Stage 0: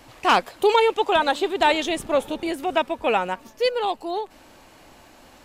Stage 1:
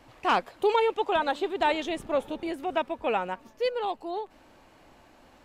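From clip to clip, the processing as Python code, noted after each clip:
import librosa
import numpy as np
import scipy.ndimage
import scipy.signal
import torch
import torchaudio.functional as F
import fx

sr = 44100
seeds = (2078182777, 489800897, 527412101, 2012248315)

y = fx.high_shelf(x, sr, hz=3900.0, db=-9.0)
y = F.gain(torch.from_numpy(y), -5.5).numpy()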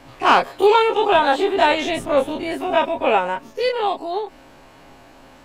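y = fx.spec_dilate(x, sr, span_ms=60)
y = y + 0.36 * np.pad(y, (int(7.4 * sr / 1000.0), 0))[:len(y)]
y = F.gain(torch.from_numpy(y), 5.5).numpy()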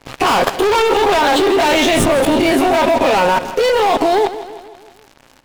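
y = fx.leveller(x, sr, passes=5)
y = fx.level_steps(y, sr, step_db=18)
y = fx.echo_feedback(y, sr, ms=160, feedback_pct=54, wet_db=-14)
y = F.gain(torch.from_numpy(y), 5.0).numpy()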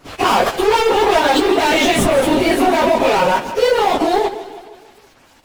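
y = fx.phase_scramble(x, sr, seeds[0], window_ms=50)
y = F.gain(torch.from_numpy(y), -1.0).numpy()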